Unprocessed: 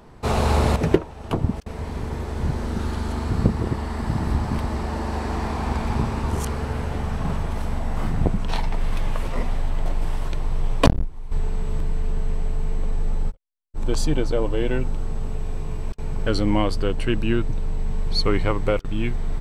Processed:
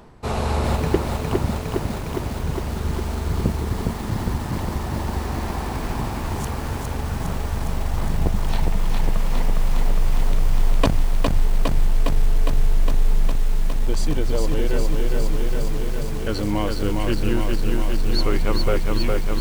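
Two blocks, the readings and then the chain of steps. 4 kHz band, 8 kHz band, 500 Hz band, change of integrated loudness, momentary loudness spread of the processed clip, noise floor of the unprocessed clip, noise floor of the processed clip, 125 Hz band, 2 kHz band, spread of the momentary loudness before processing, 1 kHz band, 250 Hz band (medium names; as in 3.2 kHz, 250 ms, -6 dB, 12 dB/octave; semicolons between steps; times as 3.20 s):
+1.0 dB, +3.5 dB, 0.0 dB, +1.0 dB, 5 LU, -37 dBFS, -28 dBFS, +0.5 dB, +0.5 dB, 9 LU, 0.0 dB, -0.5 dB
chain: reverse; upward compressor, threshold -24 dBFS; reverse; bit-crushed delay 409 ms, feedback 80%, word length 6-bit, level -3 dB; trim -3 dB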